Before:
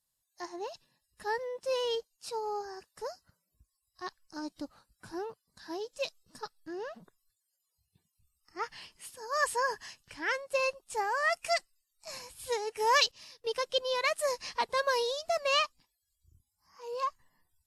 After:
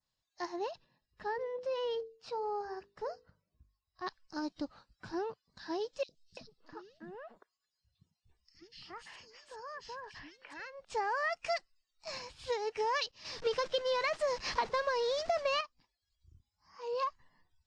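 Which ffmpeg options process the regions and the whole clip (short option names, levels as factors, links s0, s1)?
-filter_complex "[0:a]asettb=1/sr,asplit=3[s0][s1][s2];[s0]atrim=end=0.714[s3];[s1]atrim=start=0.71:end=4.07,asetpts=PTS-STARTPTS,afade=t=in:d=0.004:c=qsin,afade=t=out:st=3.356:d=0.004:c=qsin,highshelf=f=3000:g=-11,bandreject=f=50:t=h:w=6,bandreject=f=100:t=h:w=6,bandreject=f=150:t=h:w=6,bandreject=f=200:t=h:w=6,bandreject=f=250:t=h:w=6,bandreject=f=300:t=h:w=6,bandreject=f=350:t=h:w=6,bandreject=f=400:t=h:w=6,bandreject=f=450:t=h:w=6,bandreject=f=500:t=h:w=6,acompressor=threshold=0.0158:ratio=2:attack=3.2:release=140:knee=1:detection=peak[s4];[s2]atrim=start=4.066[s5];[s3][s4]acrossfade=d=0.004:c1=hsin:c2=qsin[s6];[s6][s5]acrossfade=d=0.004:c1=qsin:c2=hsin,asettb=1/sr,asplit=3[s7][s8][s9];[s7]atrim=end=6.034[s10];[s8]atrim=start=6.03:end=10.85,asetpts=PTS-STARTPTS,afade=t=in:d=0.004:c=qsin,afade=t=out:st=4.816:d=0.004:c=qsin,acompressor=threshold=0.00562:ratio=6:attack=3.2:release=140:knee=1:detection=peak,acrossover=split=320|2900[s11][s12][s13];[s11]adelay=60[s14];[s12]adelay=340[s15];[s14][s15][s13]amix=inputs=3:normalize=0,atrim=end_sample=212562[s16];[s9]atrim=start=10.846[s17];[s10][s16]acrossfade=d=0.004:c1=hsin:c2=qsin[s18];[s18][s17]acrossfade=d=0.004:c1=qsin:c2=hsin,asettb=1/sr,asplit=3[s19][s20][s21];[s19]atrim=end=13.244[s22];[s20]atrim=start=13.24:end=15.61,asetpts=PTS-STARTPTS,afade=t=in:d=0.004:c=qsin,afade=t=out:st=2.366:d=0.004:c=qsin,aeval=exprs='val(0)+0.5*0.0211*sgn(val(0))':c=same,acontrast=78,agate=range=0.0224:threshold=0.0562:ratio=3:release=100:detection=peak[s23];[s21]atrim=start=15.606[s24];[s22][s23]acrossfade=d=0.004:c1=hsin:c2=qsin[s25];[s25][s24]acrossfade=d=0.004:c1=qsin:c2=hsin,lowpass=f=5400:w=0.5412,lowpass=f=5400:w=1.3066,adynamicequalizer=threshold=0.00316:dfrequency=3400:dqfactor=1.4:tfrequency=3400:tqfactor=1.4:attack=5:release=100:ratio=0.375:range=2.5:mode=cutabove:tftype=bell,acompressor=threshold=0.0224:ratio=6,volume=1.33"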